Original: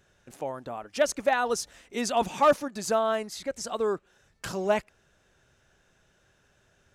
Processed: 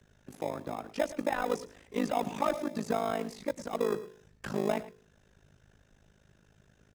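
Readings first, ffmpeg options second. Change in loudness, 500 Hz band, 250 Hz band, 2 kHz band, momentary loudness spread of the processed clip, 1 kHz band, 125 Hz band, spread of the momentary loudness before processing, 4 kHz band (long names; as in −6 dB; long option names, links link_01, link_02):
−5.5 dB, −5.5 dB, 0.0 dB, −7.5 dB, 8 LU, −6.5 dB, +0.5 dB, 13 LU, −9.0 dB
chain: -filter_complex "[0:a]lowshelf=frequency=280:gain=9.5,bandreject=frequency=83.25:width_type=h:width=4,bandreject=frequency=166.5:width_type=h:width=4,bandreject=frequency=249.75:width_type=h:width=4,bandreject=frequency=333:width_type=h:width=4,bandreject=frequency=416.25:width_type=h:width=4,bandreject=frequency=499.5:width_type=h:width=4,bandreject=frequency=582.75:width_type=h:width=4,acrossover=split=140|2600[link_01][link_02][link_03];[link_01]acompressor=threshold=-60dB:ratio=4[link_04];[link_02]acompressor=threshold=-24dB:ratio=4[link_05];[link_03]acompressor=threshold=-48dB:ratio=4[link_06];[link_04][link_05][link_06]amix=inputs=3:normalize=0,afreqshift=16,asplit=2[link_07][link_08];[link_08]acrusher=samples=30:mix=1:aa=0.000001,volume=-9.5dB[link_09];[link_07][link_09]amix=inputs=2:normalize=0,tremolo=f=52:d=0.947,asplit=2[link_10][link_11];[link_11]aecho=0:1:108:0.15[link_12];[link_10][link_12]amix=inputs=2:normalize=0"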